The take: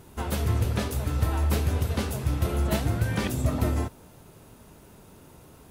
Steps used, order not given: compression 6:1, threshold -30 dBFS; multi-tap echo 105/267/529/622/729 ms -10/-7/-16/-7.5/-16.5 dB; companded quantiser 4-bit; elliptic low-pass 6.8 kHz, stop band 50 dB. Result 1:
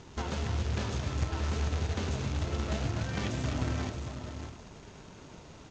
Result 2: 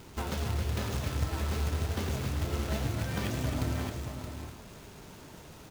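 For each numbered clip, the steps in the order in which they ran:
compression > multi-tap echo > companded quantiser > elliptic low-pass; elliptic low-pass > companded quantiser > compression > multi-tap echo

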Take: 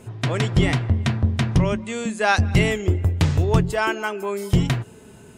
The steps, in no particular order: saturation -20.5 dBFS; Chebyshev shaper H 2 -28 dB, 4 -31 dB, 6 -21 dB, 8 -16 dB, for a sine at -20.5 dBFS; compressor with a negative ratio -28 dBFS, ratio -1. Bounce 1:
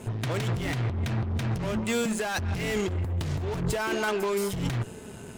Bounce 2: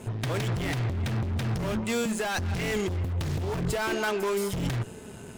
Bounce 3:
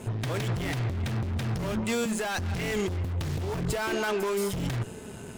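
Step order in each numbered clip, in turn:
saturation > Chebyshev shaper > compressor with a negative ratio; Chebyshev shaper > saturation > compressor with a negative ratio; Chebyshev shaper > compressor with a negative ratio > saturation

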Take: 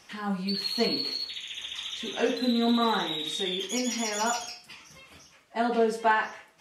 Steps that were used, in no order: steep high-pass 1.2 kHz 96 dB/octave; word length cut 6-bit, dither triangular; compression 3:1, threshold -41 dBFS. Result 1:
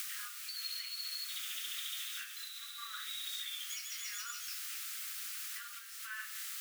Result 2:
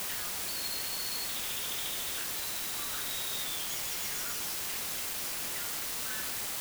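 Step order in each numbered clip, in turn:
word length cut > compression > steep high-pass; compression > steep high-pass > word length cut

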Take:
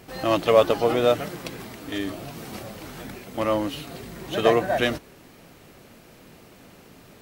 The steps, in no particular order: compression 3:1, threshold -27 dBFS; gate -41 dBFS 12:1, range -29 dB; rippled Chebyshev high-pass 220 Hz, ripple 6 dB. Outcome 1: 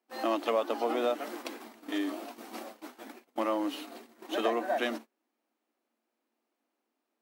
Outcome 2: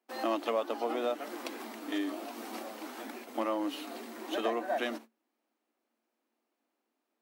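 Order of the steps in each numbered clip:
rippled Chebyshev high-pass > compression > gate; compression > gate > rippled Chebyshev high-pass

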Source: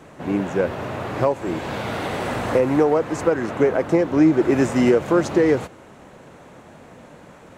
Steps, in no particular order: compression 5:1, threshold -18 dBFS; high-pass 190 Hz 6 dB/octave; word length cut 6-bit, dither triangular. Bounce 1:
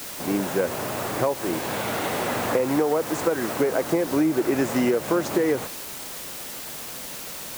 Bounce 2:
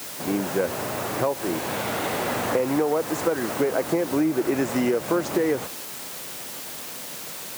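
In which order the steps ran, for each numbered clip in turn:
high-pass > word length cut > compression; word length cut > compression > high-pass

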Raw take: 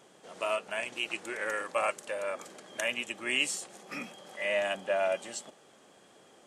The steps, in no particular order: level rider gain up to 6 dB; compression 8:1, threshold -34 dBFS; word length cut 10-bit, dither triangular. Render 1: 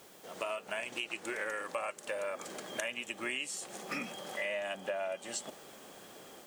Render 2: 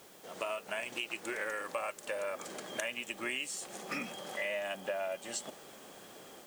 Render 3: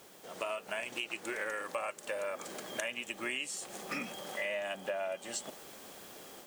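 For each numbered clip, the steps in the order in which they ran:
level rider > word length cut > compression; level rider > compression > word length cut; word length cut > level rider > compression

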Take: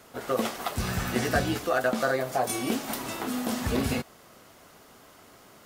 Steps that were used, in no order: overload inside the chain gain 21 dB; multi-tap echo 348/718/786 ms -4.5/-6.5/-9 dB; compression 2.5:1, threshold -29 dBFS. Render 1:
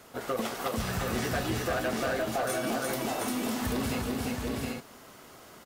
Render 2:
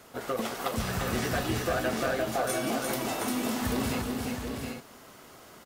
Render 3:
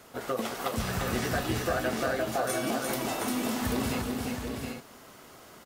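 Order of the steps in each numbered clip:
multi-tap echo > overload inside the chain > compression; overload inside the chain > compression > multi-tap echo; compression > multi-tap echo > overload inside the chain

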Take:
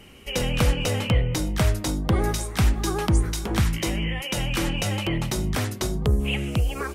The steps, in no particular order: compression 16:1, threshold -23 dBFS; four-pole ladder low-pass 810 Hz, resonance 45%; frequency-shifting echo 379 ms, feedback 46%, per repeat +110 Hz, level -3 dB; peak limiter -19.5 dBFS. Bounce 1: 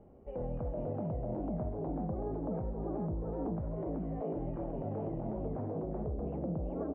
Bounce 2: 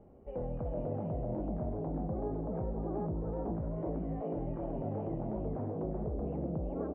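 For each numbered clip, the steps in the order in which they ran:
frequency-shifting echo > compression > peak limiter > four-pole ladder low-pass; peak limiter > frequency-shifting echo > compression > four-pole ladder low-pass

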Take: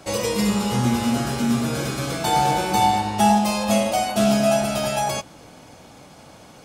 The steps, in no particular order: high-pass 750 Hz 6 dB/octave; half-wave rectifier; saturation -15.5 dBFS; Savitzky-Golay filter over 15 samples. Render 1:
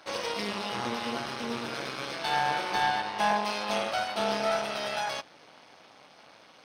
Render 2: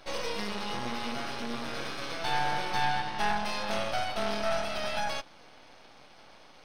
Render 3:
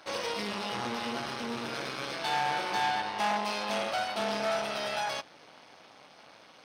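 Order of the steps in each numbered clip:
half-wave rectifier > high-pass > saturation > Savitzky-Golay filter; saturation > high-pass > half-wave rectifier > Savitzky-Golay filter; half-wave rectifier > Savitzky-Golay filter > saturation > high-pass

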